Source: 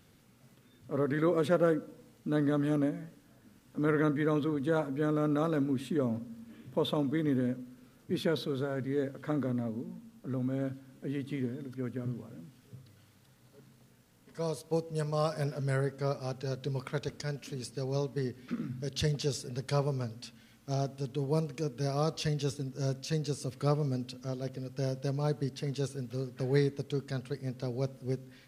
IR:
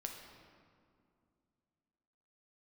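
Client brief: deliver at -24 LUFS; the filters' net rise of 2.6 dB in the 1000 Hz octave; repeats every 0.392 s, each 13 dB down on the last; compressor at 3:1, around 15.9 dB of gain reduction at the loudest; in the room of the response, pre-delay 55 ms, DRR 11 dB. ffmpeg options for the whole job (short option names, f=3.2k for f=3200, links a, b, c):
-filter_complex "[0:a]equalizer=f=1k:t=o:g=3.5,acompressor=threshold=-44dB:ratio=3,aecho=1:1:392|784|1176:0.224|0.0493|0.0108,asplit=2[a][b];[1:a]atrim=start_sample=2205,adelay=55[c];[b][c]afir=irnorm=-1:irlink=0,volume=-9dB[d];[a][d]amix=inputs=2:normalize=0,volume=21dB"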